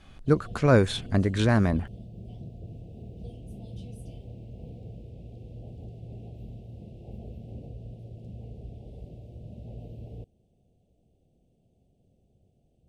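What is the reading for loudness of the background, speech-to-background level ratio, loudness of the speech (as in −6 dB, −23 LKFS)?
−43.5 LKFS, 19.0 dB, −24.5 LKFS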